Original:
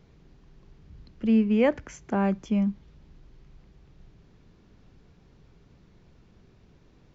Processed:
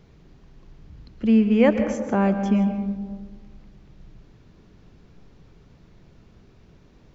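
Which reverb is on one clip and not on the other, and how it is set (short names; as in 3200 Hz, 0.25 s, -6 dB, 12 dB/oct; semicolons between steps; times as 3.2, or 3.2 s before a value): digital reverb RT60 1.6 s, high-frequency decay 0.3×, pre-delay 90 ms, DRR 8 dB; gain +4 dB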